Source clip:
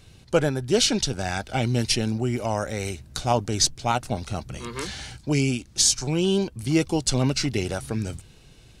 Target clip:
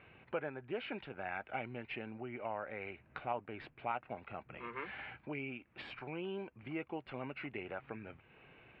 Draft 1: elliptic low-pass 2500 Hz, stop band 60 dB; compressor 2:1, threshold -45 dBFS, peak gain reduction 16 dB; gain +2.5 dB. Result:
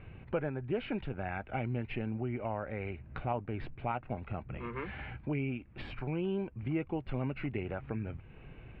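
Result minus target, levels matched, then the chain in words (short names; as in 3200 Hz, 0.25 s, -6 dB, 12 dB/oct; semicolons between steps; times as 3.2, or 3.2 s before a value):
1000 Hz band -3.5 dB
elliptic low-pass 2500 Hz, stop band 60 dB; compressor 2:1, threshold -45 dBFS, peak gain reduction 16 dB; HPF 710 Hz 6 dB/oct; gain +2.5 dB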